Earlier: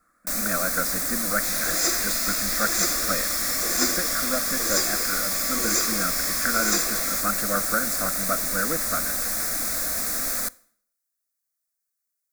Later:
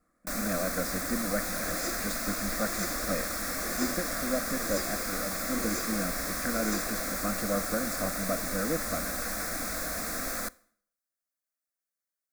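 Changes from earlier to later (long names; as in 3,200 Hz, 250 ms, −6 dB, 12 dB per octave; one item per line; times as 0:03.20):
speech: add parametric band 1,400 Hz −12.5 dB 0.7 octaves
second sound −7.0 dB
master: add high-shelf EQ 3,400 Hz −10.5 dB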